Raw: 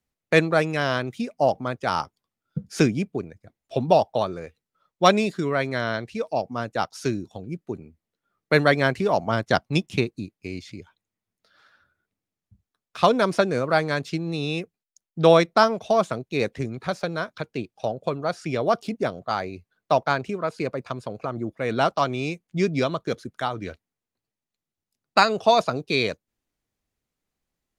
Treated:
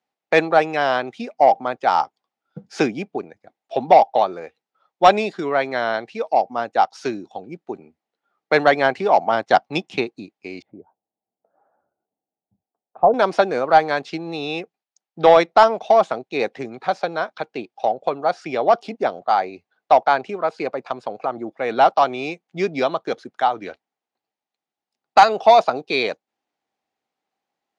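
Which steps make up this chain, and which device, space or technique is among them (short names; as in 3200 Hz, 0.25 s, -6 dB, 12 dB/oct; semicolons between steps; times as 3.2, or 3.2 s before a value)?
intercom (BPF 300–4800 Hz; bell 790 Hz +11.5 dB 0.36 oct; soft clip -4.5 dBFS, distortion -19 dB); 10.62–13.14 Chebyshev low-pass 750 Hz, order 3; gain +3 dB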